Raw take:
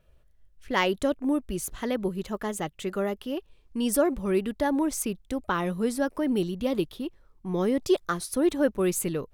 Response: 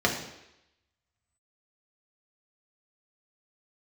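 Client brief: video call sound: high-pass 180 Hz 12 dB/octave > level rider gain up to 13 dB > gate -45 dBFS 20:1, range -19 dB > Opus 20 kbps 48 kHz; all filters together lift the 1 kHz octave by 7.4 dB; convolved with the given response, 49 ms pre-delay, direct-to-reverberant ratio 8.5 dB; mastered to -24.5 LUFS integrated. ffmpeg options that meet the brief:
-filter_complex "[0:a]equalizer=f=1000:t=o:g=9,asplit=2[s0][s1];[1:a]atrim=start_sample=2205,adelay=49[s2];[s1][s2]afir=irnorm=-1:irlink=0,volume=0.075[s3];[s0][s3]amix=inputs=2:normalize=0,highpass=180,dynaudnorm=m=4.47,agate=range=0.112:threshold=0.00562:ratio=20,volume=1.19" -ar 48000 -c:a libopus -b:a 20k

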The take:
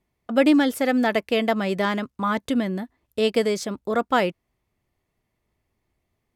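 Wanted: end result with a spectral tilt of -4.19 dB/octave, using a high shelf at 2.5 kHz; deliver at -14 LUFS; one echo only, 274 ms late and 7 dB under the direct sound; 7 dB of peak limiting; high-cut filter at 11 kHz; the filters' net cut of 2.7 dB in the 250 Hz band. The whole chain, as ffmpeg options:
-af "lowpass=11000,equalizer=f=250:t=o:g=-3,highshelf=f=2500:g=-7,alimiter=limit=0.168:level=0:latency=1,aecho=1:1:274:0.447,volume=3.98"

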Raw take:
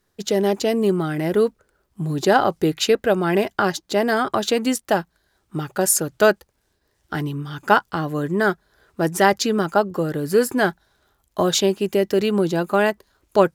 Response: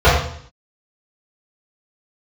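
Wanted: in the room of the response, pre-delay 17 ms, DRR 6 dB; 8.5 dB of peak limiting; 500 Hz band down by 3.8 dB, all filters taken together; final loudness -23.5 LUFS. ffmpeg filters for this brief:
-filter_complex "[0:a]equalizer=f=500:t=o:g=-5,alimiter=limit=0.251:level=0:latency=1,asplit=2[s0][s1];[1:a]atrim=start_sample=2205,adelay=17[s2];[s1][s2]afir=irnorm=-1:irlink=0,volume=0.0178[s3];[s0][s3]amix=inputs=2:normalize=0,volume=0.944"

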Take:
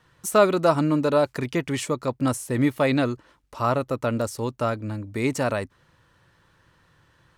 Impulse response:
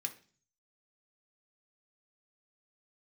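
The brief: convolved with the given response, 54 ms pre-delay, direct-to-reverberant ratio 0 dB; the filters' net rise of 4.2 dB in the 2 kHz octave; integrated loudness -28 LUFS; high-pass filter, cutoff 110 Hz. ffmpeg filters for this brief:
-filter_complex "[0:a]highpass=110,equalizer=f=2000:t=o:g=5.5,asplit=2[s0][s1];[1:a]atrim=start_sample=2205,adelay=54[s2];[s1][s2]afir=irnorm=-1:irlink=0,volume=1.12[s3];[s0][s3]amix=inputs=2:normalize=0,volume=0.473"

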